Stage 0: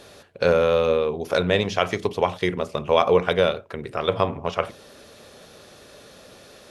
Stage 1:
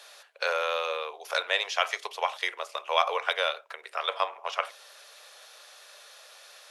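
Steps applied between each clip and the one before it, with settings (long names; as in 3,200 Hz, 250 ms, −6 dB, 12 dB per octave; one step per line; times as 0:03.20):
Bessel high-pass filter 1,000 Hz, order 6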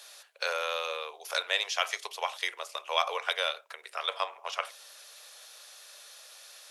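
high-shelf EQ 3,900 Hz +10.5 dB
level −5 dB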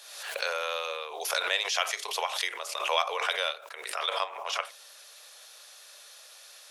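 background raised ahead of every attack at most 52 dB per second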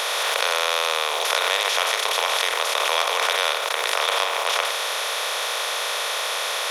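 compressor on every frequency bin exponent 0.2
level −1 dB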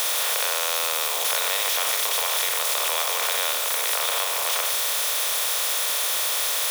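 spike at every zero crossing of −12 dBFS
level −6 dB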